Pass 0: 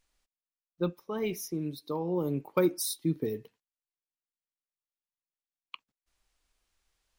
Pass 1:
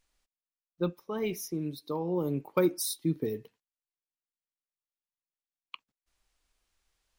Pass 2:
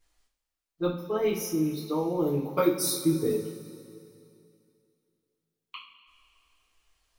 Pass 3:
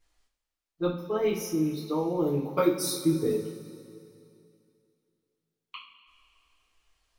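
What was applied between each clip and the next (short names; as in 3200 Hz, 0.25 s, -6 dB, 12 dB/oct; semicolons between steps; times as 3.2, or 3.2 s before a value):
nothing audible
two-slope reverb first 0.35 s, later 2.6 s, from -17 dB, DRR -8 dB; gain -4 dB
high shelf 9500 Hz -6.5 dB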